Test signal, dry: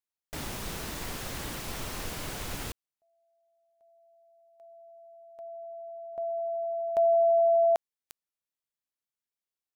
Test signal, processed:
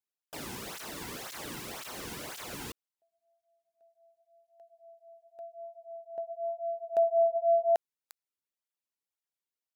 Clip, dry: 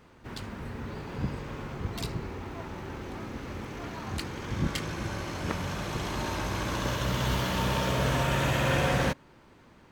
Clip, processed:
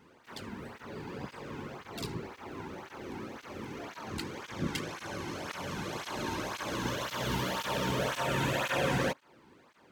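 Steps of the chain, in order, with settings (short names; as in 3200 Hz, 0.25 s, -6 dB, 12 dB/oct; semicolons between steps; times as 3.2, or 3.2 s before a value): tape flanging out of phase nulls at 1.9 Hz, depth 1.8 ms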